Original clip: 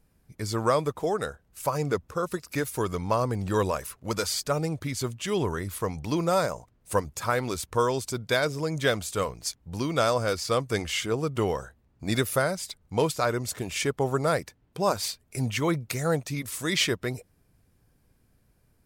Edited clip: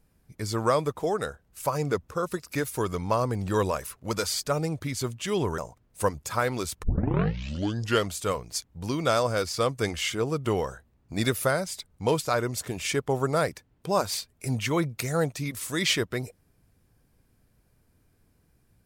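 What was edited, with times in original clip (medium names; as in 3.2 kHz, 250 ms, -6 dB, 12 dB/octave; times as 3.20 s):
5.58–6.49 s: delete
7.74 s: tape start 1.29 s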